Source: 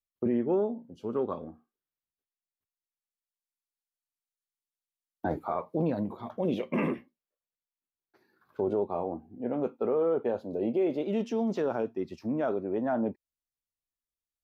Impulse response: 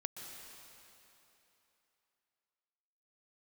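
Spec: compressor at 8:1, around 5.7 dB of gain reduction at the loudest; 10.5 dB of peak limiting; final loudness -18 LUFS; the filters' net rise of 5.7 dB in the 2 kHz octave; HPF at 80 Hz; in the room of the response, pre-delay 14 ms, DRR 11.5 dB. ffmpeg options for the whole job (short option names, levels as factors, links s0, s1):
-filter_complex "[0:a]highpass=80,equalizer=f=2000:t=o:g=7.5,acompressor=threshold=0.0355:ratio=8,alimiter=level_in=1.88:limit=0.0631:level=0:latency=1,volume=0.531,asplit=2[s0][s1];[1:a]atrim=start_sample=2205,adelay=14[s2];[s1][s2]afir=irnorm=-1:irlink=0,volume=0.299[s3];[s0][s3]amix=inputs=2:normalize=0,volume=11.2"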